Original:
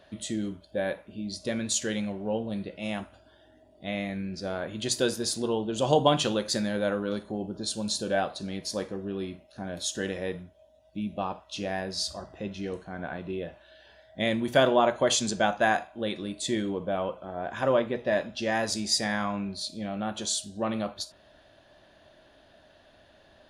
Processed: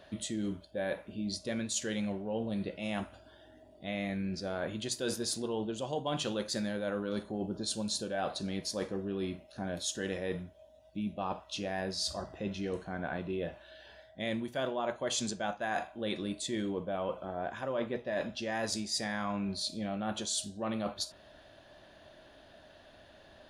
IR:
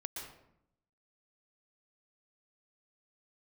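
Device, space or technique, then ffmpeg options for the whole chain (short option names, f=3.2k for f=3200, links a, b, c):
compression on the reversed sound: -af "areverse,acompressor=threshold=-32dB:ratio=8,areverse,volume=1dB"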